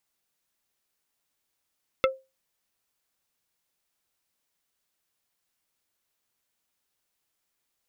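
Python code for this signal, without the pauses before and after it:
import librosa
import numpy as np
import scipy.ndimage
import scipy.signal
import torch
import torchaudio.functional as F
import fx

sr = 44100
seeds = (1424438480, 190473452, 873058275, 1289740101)

y = fx.strike_wood(sr, length_s=0.45, level_db=-16, body='plate', hz=529.0, decay_s=0.25, tilt_db=2, modes=5)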